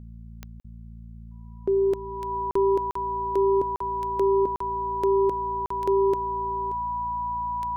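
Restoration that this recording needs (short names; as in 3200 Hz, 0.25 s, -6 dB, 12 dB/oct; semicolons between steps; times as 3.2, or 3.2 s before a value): de-click; de-hum 56.6 Hz, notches 4; notch 980 Hz, Q 30; interpolate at 0.6/2.51/2.91/3.76/4.56/5.66, 44 ms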